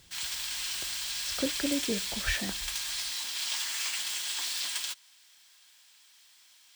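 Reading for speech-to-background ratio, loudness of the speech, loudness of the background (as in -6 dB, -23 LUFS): -3.0 dB, -34.5 LUFS, -31.5 LUFS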